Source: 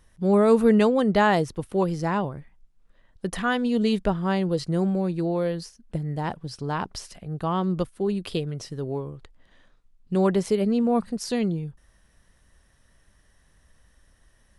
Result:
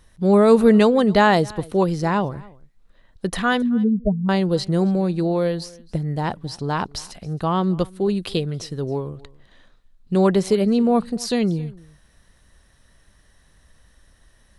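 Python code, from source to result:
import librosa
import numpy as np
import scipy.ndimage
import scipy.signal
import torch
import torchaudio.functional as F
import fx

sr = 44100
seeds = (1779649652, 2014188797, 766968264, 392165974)

p1 = fx.spec_expand(x, sr, power=3.7, at=(3.62, 4.29))
p2 = fx.peak_eq(p1, sr, hz=4000.0, db=6.0, octaves=0.24)
p3 = p2 + fx.echo_single(p2, sr, ms=269, db=-23.5, dry=0)
y = F.gain(torch.from_numpy(p3), 4.5).numpy()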